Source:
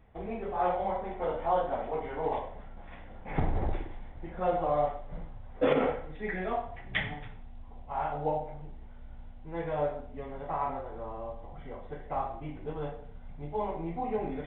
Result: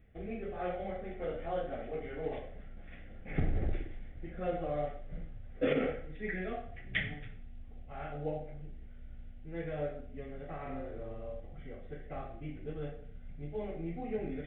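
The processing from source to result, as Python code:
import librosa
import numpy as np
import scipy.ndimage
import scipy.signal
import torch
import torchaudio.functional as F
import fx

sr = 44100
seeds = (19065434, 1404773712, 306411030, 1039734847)

y = fx.fixed_phaser(x, sr, hz=2300.0, stages=4)
y = fx.room_flutter(y, sr, wall_m=7.8, rt60_s=0.53, at=(10.62, 11.4))
y = y * 10.0 ** (-1.5 / 20.0)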